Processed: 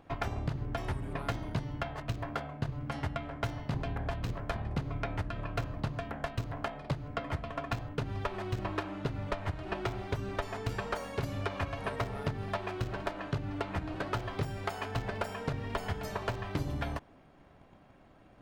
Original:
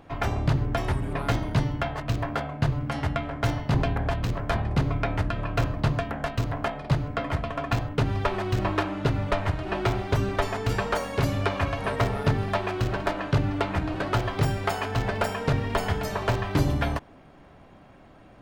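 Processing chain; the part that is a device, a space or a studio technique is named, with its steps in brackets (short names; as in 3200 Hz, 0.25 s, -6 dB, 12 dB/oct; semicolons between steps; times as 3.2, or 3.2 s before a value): drum-bus smash (transient shaper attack +8 dB, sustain +1 dB; compressor, threshold -19 dBFS, peak gain reduction 9 dB; soft clip -13.5 dBFS, distortion -17 dB); gain -8.5 dB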